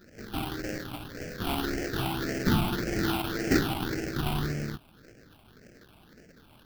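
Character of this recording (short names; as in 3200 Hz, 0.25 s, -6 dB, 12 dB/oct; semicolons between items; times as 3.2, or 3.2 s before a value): aliases and images of a low sample rate 1100 Hz, jitter 20%; phasing stages 6, 1.8 Hz, lowest notch 470–1000 Hz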